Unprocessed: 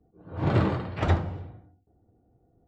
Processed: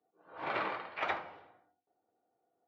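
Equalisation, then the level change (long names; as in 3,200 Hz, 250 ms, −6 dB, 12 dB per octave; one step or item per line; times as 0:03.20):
high-pass filter 860 Hz 12 dB per octave
dynamic equaliser 2,300 Hz, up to +7 dB, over −58 dBFS, Q 6.4
high-frequency loss of the air 200 metres
0.0 dB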